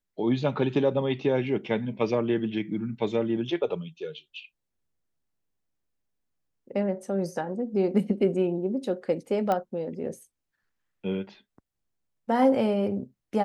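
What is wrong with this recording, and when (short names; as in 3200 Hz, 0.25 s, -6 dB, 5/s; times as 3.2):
9.52 pop -15 dBFS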